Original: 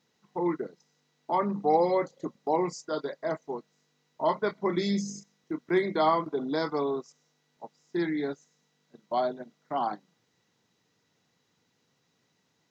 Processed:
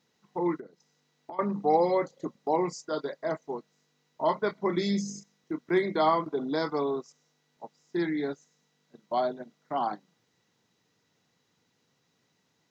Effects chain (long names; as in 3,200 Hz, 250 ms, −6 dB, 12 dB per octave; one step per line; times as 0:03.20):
0:00.56–0:01.39: downward compressor 16 to 1, threshold −40 dBFS, peak gain reduction 18.5 dB